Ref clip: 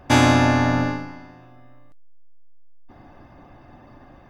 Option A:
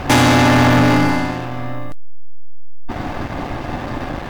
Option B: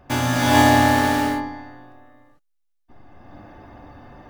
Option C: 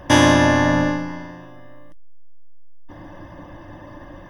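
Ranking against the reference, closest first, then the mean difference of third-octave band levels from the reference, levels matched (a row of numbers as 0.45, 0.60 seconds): C, B, A; 3.5, 7.0, 12.0 decibels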